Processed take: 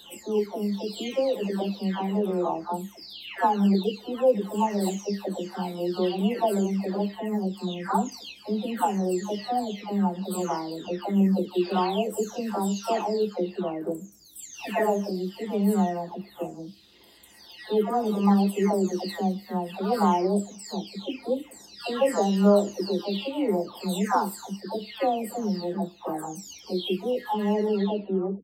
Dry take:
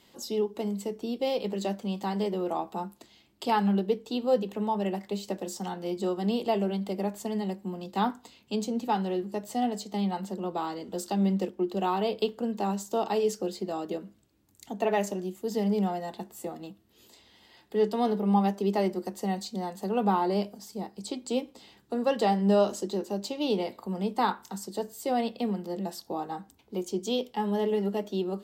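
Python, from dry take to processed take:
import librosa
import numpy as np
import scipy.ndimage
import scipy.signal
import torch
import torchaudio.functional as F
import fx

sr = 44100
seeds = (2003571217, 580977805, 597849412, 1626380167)

y = fx.spec_delay(x, sr, highs='early', ms=679)
y = y * 10.0 ** (4.5 / 20.0)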